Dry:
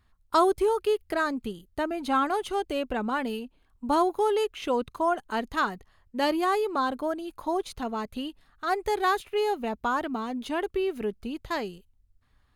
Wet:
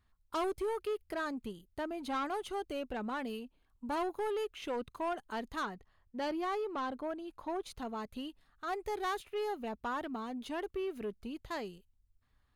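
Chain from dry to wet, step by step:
0:05.63–0:07.63: low-pass filter 3,800 Hz 6 dB per octave
soft clipping −22.5 dBFS, distortion −13 dB
level −7.5 dB

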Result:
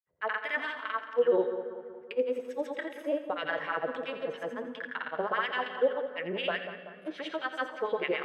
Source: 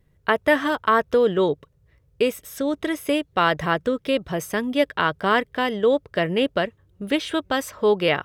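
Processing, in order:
brickwall limiter −14 dBFS, peak gain reduction 8.5 dB
LFO wah 4.7 Hz 470–2,600 Hz, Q 2.3
granular cloud, pitch spread up and down by 0 semitones
echo with a time of its own for lows and highs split 1,600 Hz, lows 190 ms, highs 85 ms, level −10 dB
on a send at −11.5 dB: convolution reverb RT60 2.2 s, pre-delay 3 ms

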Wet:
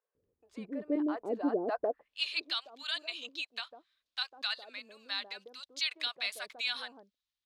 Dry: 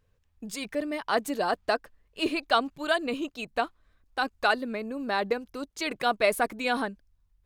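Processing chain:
brickwall limiter −17.5 dBFS, peak gain reduction 9 dB
band-pass filter sweep 360 Hz → 3,800 Hz, 0:01.63–0:02.16
multiband delay without the direct sound highs, lows 150 ms, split 700 Hz
level +5.5 dB

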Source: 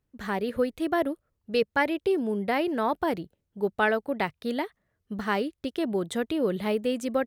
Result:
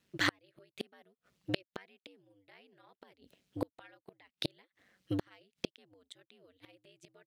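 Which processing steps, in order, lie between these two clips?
gate with flip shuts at −24 dBFS, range −41 dB
ring modulation 96 Hz
meter weighting curve D
level +7.5 dB

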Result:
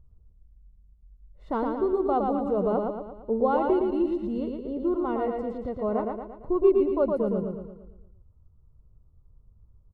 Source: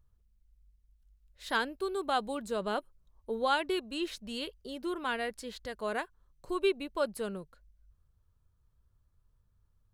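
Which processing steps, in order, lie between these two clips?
Savitzky-Golay smoothing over 65 samples
tilt shelving filter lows +6 dB, about 640 Hz
on a send: repeating echo 114 ms, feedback 50%, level −3.5 dB
on the sum: level +6 dB

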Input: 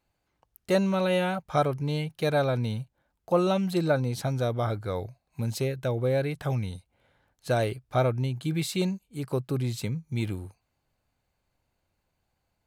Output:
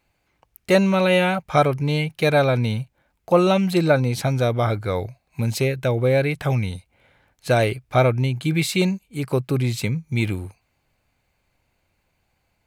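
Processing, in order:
parametric band 2,300 Hz +7 dB 0.53 octaves
level +7 dB

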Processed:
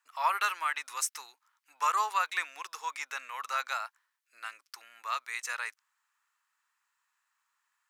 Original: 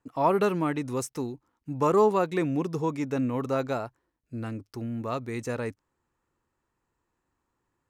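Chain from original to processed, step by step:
high-pass filter 1,200 Hz 24 dB per octave
level +6 dB

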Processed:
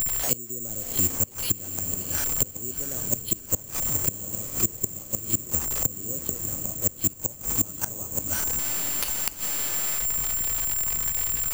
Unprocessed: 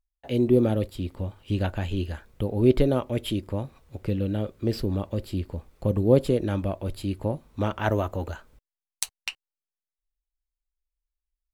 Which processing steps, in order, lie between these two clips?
linear delta modulator 64 kbit/s, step −31 dBFS
high-shelf EQ 7,400 Hz +8.5 dB
noise gate −26 dBFS, range −12 dB
downward compressor 3 to 1, threshold −30 dBFS, peak gain reduction 13.5 dB
gate with flip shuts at −25 dBFS, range −27 dB
feedback delay with all-pass diffusion 733 ms, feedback 47%, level −12.5 dB
bad sample-rate conversion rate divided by 6×, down filtered, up zero stuff
boost into a limiter +12 dB
multiband upward and downward compressor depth 70%

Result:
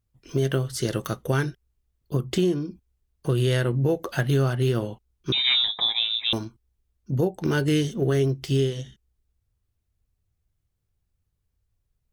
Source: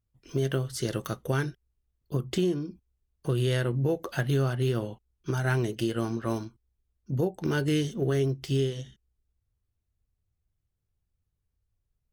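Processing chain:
0:05.32–0:06.33: voice inversion scrambler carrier 3,800 Hz
level +4 dB

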